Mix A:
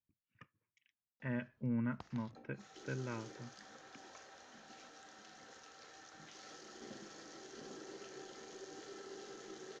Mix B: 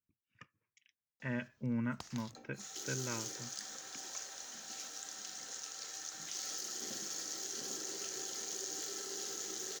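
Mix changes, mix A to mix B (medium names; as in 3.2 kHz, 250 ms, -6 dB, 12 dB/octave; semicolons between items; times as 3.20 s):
background: remove low-pass 3.5 kHz 6 dB/octave; master: remove tape spacing loss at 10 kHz 21 dB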